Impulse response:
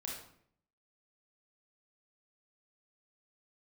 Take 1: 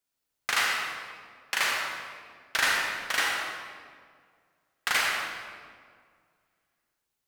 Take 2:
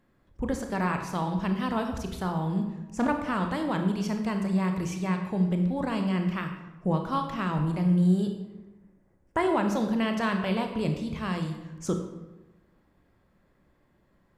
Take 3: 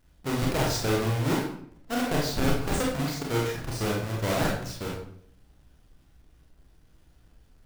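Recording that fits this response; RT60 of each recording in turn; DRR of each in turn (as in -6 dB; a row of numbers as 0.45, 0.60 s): 3; 2.0, 1.1, 0.65 s; -2.0, 4.5, -3.0 dB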